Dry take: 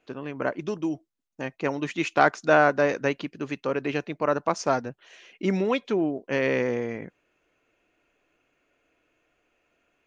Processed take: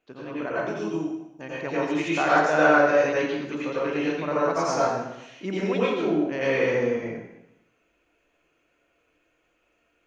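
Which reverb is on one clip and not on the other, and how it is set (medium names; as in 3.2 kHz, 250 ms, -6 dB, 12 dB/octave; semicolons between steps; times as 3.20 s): plate-style reverb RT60 0.87 s, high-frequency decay 0.9×, pre-delay 75 ms, DRR -8 dB; trim -7 dB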